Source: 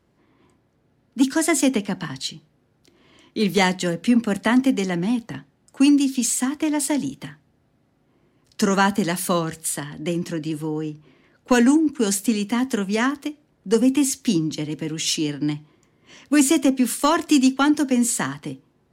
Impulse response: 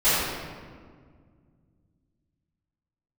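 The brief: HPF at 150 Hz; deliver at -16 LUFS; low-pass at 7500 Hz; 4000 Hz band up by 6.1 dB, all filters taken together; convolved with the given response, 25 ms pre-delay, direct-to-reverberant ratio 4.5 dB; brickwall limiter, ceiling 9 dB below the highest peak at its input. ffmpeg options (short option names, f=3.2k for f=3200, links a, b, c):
-filter_complex "[0:a]highpass=150,lowpass=7.5k,equalizer=f=4k:t=o:g=8.5,alimiter=limit=-13.5dB:level=0:latency=1,asplit=2[a][b];[1:a]atrim=start_sample=2205,adelay=25[c];[b][c]afir=irnorm=-1:irlink=0,volume=-23dB[d];[a][d]amix=inputs=2:normalize=0,volume=7dB"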